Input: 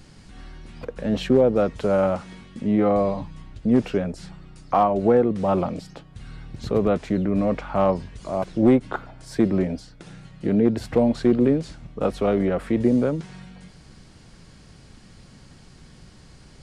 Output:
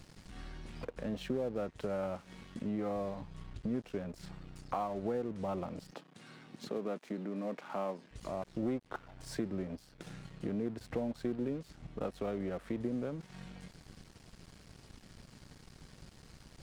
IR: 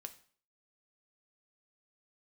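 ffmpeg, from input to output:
-filter_complex "[0:a]acompressor=threshold=-37dB:ratio=2.5,aeval=exprs='sgn(val(0))*max(abs(val(0))-0.00282,0)':channel_layout=same,asettb=1/sr,asplit=3[link_01][link_02][link_03];[link_01]atrim=end=5.924[link_04];[link_02]atrim=start=5.92:end=8.11,asetpts=PTS-STARTPTS,afade=type=in:duration=0.004:curve=qsin,afade=type=out:start_time=2.186:duration=0.004:curve=qsin,highpass=frequency=190:width=0.5412,highpass=frequency=190:width=1.3066[link_05];[link_03]atrim=start=8.106[link_06];[link_04][link_05]acrossfade=duration=0.004:curve1=hsin:curve2=qsin[link_07];[link_07][link_06]acrossfade=duration=0.004:curve1=qsin:curve2=hsin,volume=-2.5dB"

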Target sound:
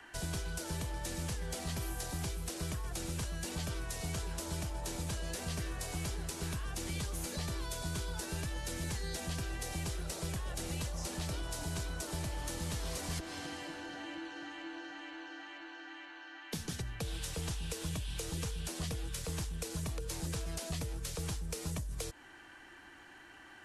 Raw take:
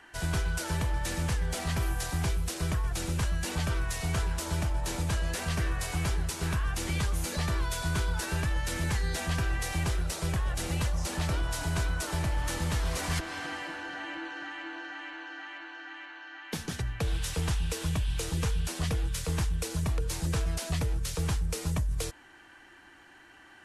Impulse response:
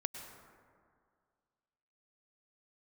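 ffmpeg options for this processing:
-filter_complex "[0:a]acrossover=split=190|690|3300[link_01][link_02][link_03][link_04];[link_01]acompressor=threshold=-40dB:ratio=4[link_05];[link_02]acompressor=threshold=-44dB:ratio=4[link_06];[link_03]acompressor=threshold=-52dB:ratio=4[link_07];[link_04]acompressor=threshold=-42dB:ratio=4[link_08];[link_05][link_06][link_07][link_08]amix=inputs=4:normalize=0"

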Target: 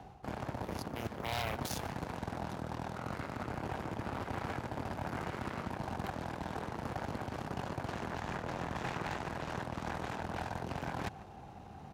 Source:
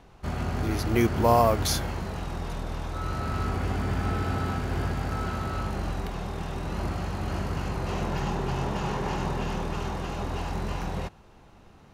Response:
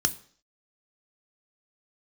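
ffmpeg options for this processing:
-filter_complex "[0:a]lowshelf=frequency=260:gain=9.5,areverse,acompressor=threshold=-32dB:ratio=10,areverse,equalizer=frequency=770:width=4.3:gain=13.5,aeval=exprs='0.1*(cos(1*acos(clip(val(0)/0.1,-1,1)))-cos(1*PI/2))+0.0251*(cos(7*acos(clip(val(0)/0.1,-1,1)))-cos(7*PI/2))':channel_layout=same,highpass=83,asplit=2[link_01][link_02];[link_02]adelay=145.8,volume=-20dB,highshelf=frequency=4000:gain=-3.28[link_03];[link_01][link_03]amix=inputs=2:normalize=0,acrossover=split=140|2000[link_04][link_05][link_06];[link_05]alimiter=level_in=7dB:limit=-24dB:level=0:latency=1:release=59,volume=-7dB[link_07];[link_04][link_07][link_06]amix=inputs=3:normalize=0,aeval=exprs='0.0355*(abs(mod(val(0)/0.0355+3,4)-2)-1)':channel_layout=same,volume=1.5dB"

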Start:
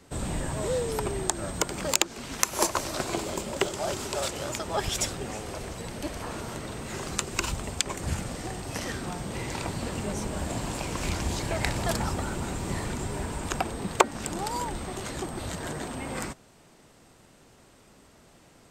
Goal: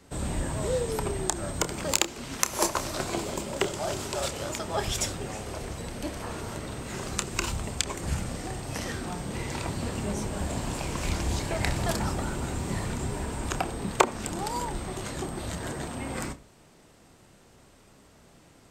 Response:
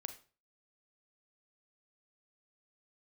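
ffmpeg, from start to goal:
-filter_complex "[0:a]asplit=2[link_01][link_02];[1:a]atrim=start_sample=2205,lowshelf=frequency=350:gain=12,adelay=29[link_03];[link_02][link_03]afir=irnorm=-1:irlink=0,volume=-9.5dB[link_04];[link_01][link_04]amix=inputs=2:normalize=0,volume=-1dB"

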